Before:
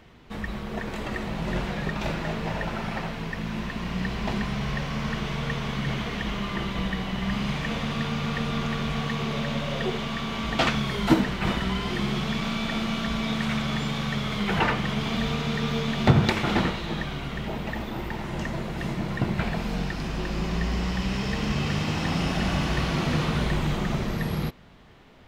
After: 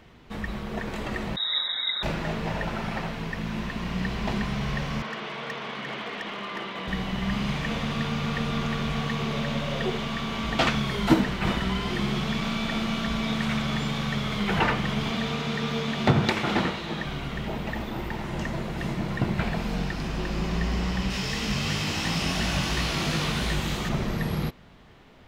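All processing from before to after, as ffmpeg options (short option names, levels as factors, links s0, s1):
-filter_complex "[0:a]asettb=1/sr,asplit=3[s0][s1][s2];[s0]atrim=end=1.364[s3];[s1]atrim=start=1.36:end=2.03,asetpts=PTS-STARTPTS,afade=t=in:d=0.004:c=qsin,afade=t=out:st=0.666:d=0.004:c=qsin,asuperstop=centerf=960:order=20:qfactor=0.79,aecho=1:1:6:0.37,atrim=end_sample=29547,lowpass=f=3300:t=q:w=0.5098,lowpass=f=3300:t=q:w=0.6013,lowpass=f=3300:t=q:w=0.9,lowpass=f=3300:t=q:w=2.563,afreqshift=-3900[s4];[s2]atrim=start=2.026[s5];[s3][s4]acrossfade=d=0.004:c1=hsin:c2=qsin[s6];[s6][s5]acrossfade=d=0.004:c1=qsin:c2=hsin,asettb=1/sr,asplit=3[s7][s8][s9];[s7]atrim=end=5.024[s10];[s8]atrim=start=5.02:end=6.88,asetpts=PTS-STARTPTS,afade=t=in:d=0.004:c=qsin,afade=t=out:st=1.856:d=0.004:c=qsin,highpass=350,lowpass=3900,asoftclip=type=hard:threshold=0.0422[s11];[s9]atrim=start=6.876[s12];[s10][s11]acrossfade=d=0.004:c1=hsin:c2=qsin[s13];[s13][s12]acrossfade=d=0.004:c1=qsin:c2=hsin,asettb=1/sr,asplit=3[s14][s15][s16];[s14]atrim=end=15.114[s17];[s15]atrim=start=15.11:end=17.05,asetpts=PTS-STARTPTS,afade=t=in:d=0.004:c=qsin,afade=t=out:st=1.936:d=0.004:c=qsin,highpass=f=150:p=1,highshelf=f=12000:g=-5[s18];[s16]atrim=start=17.046[s19];[s17][s18]acrossfade=d=0.004:c1=hsin:c2=qsin[s20];[s20][s19]acrossfade=d=0.004:c1=qsin:c2=hsin,asettb=1/sr,asplit=3[s21][s22][s23];[s21]atrim=end=21.104[s24];[s22]atrim=start=21.1:end=23.89,asetpts=PTS-STARTPTS,afade=t=in:d=0.004:c=qsin,afade=t=out:st=2.786:d=0.004:c=qsin,highshelf=f=2500:g=11,flanger=delay=17.5:depth=5.5:speed=2.9[s25];[s23]atrim=start=23.886[s26];[s24][s25]acrossfade=d=0.004:c1=hsin:c2=qsin[s27];[s27][s26]acrossfade=d=0.004:c1=qsin:c2=hsin"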